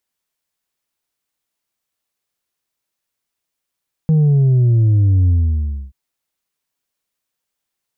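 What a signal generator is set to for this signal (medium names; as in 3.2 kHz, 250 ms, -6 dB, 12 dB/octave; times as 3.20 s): sub drop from 160 Hz, over 1.83 s, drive 3 dB, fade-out 0.64 s, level -10 dB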